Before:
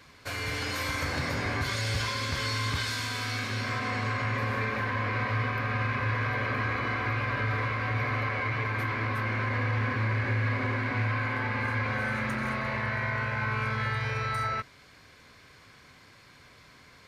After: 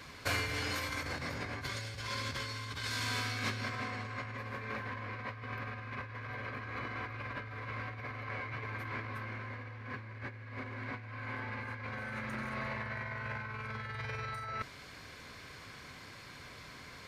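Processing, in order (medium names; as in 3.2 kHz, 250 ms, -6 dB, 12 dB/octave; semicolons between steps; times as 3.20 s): compressor with a negative ratio -35 dBFS, ratio -0.5; trim -3 dB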